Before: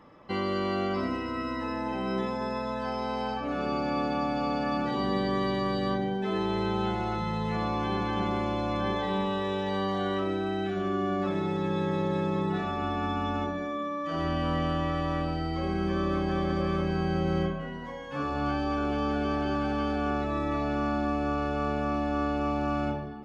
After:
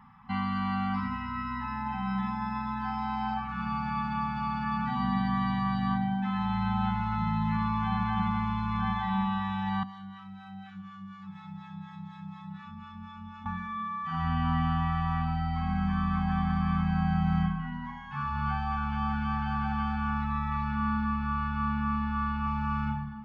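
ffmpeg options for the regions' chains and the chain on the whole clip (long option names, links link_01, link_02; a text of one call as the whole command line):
ffmpeg -i in.wav -filter_complex "[0:a]asettb=1/sr,asplit=3[link_01][link_02][link_03];[link_01]atrim=end=9.834[link_04];[link_02]atrim=start=9.83:end=13.46,asetpts=PTS-STARTPTS,afade=type=in:duration=0.004:curve=qsin,afade=type=out:start_time=3.626:duration=0.004:curve=qsin,highpass=frequency=160:poles=1,acrossover=split=360|3500[link_05][link_06][link_07];[link_05]acompressor=threshold=-41dB:ratio=4[link_08];[link_06]acompressor=threshold=-46dB:ratio=4[link_09];[link_07]acompressor=threshold=-54dB:ratio=4[link_10];[link_08][link_09][link_10]amix=inputs=3:normalize=0,acrossover=split=700[link_11][link_12];[link_11]aeval=exprs='val(0)*(1-0.7/2+0.7/2*cos(2*PI*4.1*n/s))':channel_layout=same[link_13];[link_12]aeval=exprs='val(0)*(1-0.7/2-0.7/2*cos(2*PI*4.1*n/s))':channel_layout=same[link_14];[link_13][link_14]amix=inputs=2:normalize=0[link_15];[link_03]atrim=start=13.456[link_16];[link_04][link_15]acrossfade=duration=0.004:curve1=hsin:curve2=qsin[link_17];[link_17][link_16]acrossfade=duration=0.004:curve1=qsin:curve2=hsin,asettb=1/sr,asplit=3[link_18][link_19][link_20];[link_18]atrim=end=20.714[link_21];[link_19]atrim=start=20.71:end=22.47,asetpts=PTS-STARTPTS,afade=type=in:duration=0.004:curve=qsin,afade=type=out:start_time=1.756:duration=0.004:curve=qsin,lowpass=5100,asplit=2[link_22][link_23];[link_23]adelay=18,volume=-11dB[link_24];[link_22][link_24]amix=inputs=2:normalize=0,atrim=end_sample=77616[link_25];[link_20]atrim=start=22.466[link_26];[link_21][link_25]acrossfade=duration=0.004:curve1=hsin:curve2=qsin[link_27];[link_27][link_26]acrossfade=duration=0.004:curve1=qsin:curve2=hsin,aemphasis=mode=reproduction:type=75kf,afftfilt=real='re*(1-between(b*sr/4096,250,750))':imag='im*(1-between(b*sr/4096,250,750))':win_size=4096:overlap=0.75,highshelf=frequency=4500:gain=-9.5,volume=3dB" out.wav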